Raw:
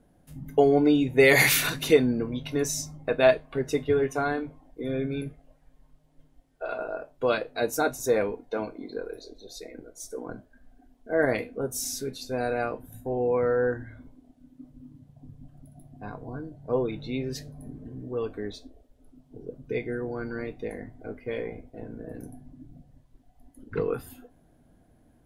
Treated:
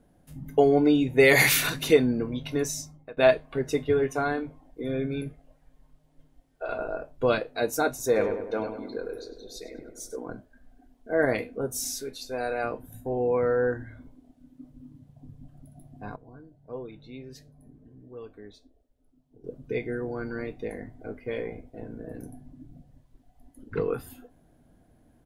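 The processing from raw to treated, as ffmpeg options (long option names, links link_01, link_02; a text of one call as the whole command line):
ffmpeg -i in.wav -filter_complex "[0:a]asettb=1/sr,asplit=3[link_01][link_02][link_03];[link_01]atrim=end=6.694[link_04];[link_02]atrim=start=6.69:end=7.4,asetpts=PTS-STARTPTS,afade=type=in:duration=0.004:curve=qsin,afade=type=out:start_time=0.706:duration=0.004:curve=qsin,lowshelf=frequency=170:gain=11[link_05];[link_03]atrim=start=7.396[link_06];[link_04][link_05]acrossfade=duration=0.004:curve1=hsin:curve2=qsin[link_07];[link_07][link_06]acrossfade=duration=0.004:curve1=qsin:curve2=hsin,asplit=3[link_08][link_09][link_10];[link_08]afade=type=out:start_time=8.15:duration=0.02[link_11];[link_09]asplit=2[link_12][link_13];[link_13]adelay=100,lowpass=frequency=2300:poles=1,volume=-7dB,asplit=2[link_14][link_15];[link_15]adelay=100,lowpass=frequency=2300:poles=1,volume=0.54,asplit=2[link_16][link_17];[link_17]adelay=100,lowpass=frequency=2300:poles=1,volume=0.54,asplit=2[link_18][link_19];[link_19]adelay=100,lowpass=frequency=2300:poles=1,volume=0.54,asplit=2[link_20][link_21];[link_21]adelay=100,lowpass=frequency=2300:poles=1,volume=0.54,asplit=2[link_22][link_23];[link_23]adelay=100,lowpass=frequency=2300:poles=1,volume=0.54,asplit=2[link_24][link_25];[link_25]adelay=100,lowpass=frequency=2300:poles=1,volume=0.54[link_26];[link_12][link_14][link_16][link_18][link_20][link_22][link_24][link_26]amix=inputs=8:normalize=0,afade=type=in:start_time=8.15:duration=0.02,afade=type=out:start_time=10.15:duration=0.02[link_27];[link_10]afade=type=in:start_time=10.15:duration=0.02[link_28];[link_11][link_27][link_28]amix=inputs=3:normalize=0,asettb=1/sr,asplit=3[link_29][link_30][link_31];[link_29]atrim=end=11.924[link_32];[link_30]atrim=start=11.92:end=12.64,asetpts=PTS-STARTPTS,afade=type=in:duration=0.004:curve=qsin,afade=type=out:start_time=0.716:duration=0.004:curve=qsin,equalizer=frequency=150:width_type=o:width=1.7:gain=-11[link_33];[link_31]atrim=start=12.636[link_34];[link_32][link_33]acrossfade=duration=0.004:curve1=hsin:curve2=qsin[link_35];[link_35][link_34]acrossfade=duration=0.004:curve1=qsin:curve2=hsin,asplit=4[link_36][link_37][link_38][link_39];[link_36]atrim=end=3.17,asetpts=PTS-STARTPTS,afade=type=out:start_time=2.56:duration=0.61:silence=0.0707946[link_40];[link_37]atrim=start=3.17:end=16.162,asetpts=PTS-STARTPTS,afade=type=in:duration=0.004:curve=hsin:silence=0.0707946[link_41];[link_38]atrim=start=16.158:end=19.442,asetpts=PTS-STARTPTS,volume=-11.5dB[link_42];[link_39]atrim=start=19.438[link_43];[link_40][link_41]concat=n=2:v=0:a=1[link_44];[link_44][link_42]acrossfade=duration=0.004:curve1=hsin:curve2=hsin[link_45];[link_45][link_43]acrossfade=duration=0.004:curve1=hsin:curve2=hsin" out.wav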